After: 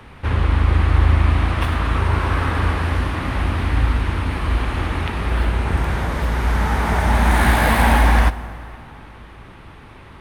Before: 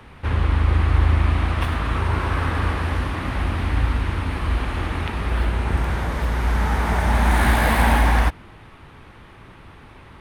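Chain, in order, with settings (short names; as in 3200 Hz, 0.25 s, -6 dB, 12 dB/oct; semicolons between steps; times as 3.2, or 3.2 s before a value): plate-style reverb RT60 3.4 s, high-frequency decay 0.6×, DRR 15 dB; gain +2.5 dB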